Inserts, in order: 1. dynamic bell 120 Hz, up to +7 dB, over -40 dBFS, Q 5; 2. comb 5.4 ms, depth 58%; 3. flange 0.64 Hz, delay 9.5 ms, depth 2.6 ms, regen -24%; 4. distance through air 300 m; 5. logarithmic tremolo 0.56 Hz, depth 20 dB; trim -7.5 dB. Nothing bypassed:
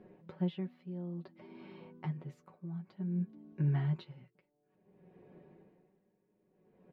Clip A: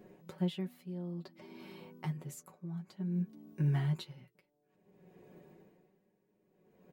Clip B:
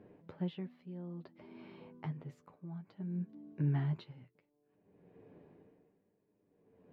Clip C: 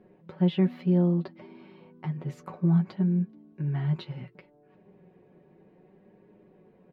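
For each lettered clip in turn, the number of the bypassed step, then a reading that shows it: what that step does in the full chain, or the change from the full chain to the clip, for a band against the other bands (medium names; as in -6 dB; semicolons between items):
4, 2 kHz band +2.5 dB; 2, loudness change -2.5 LU; 5, momentary loudness spread change -5 LU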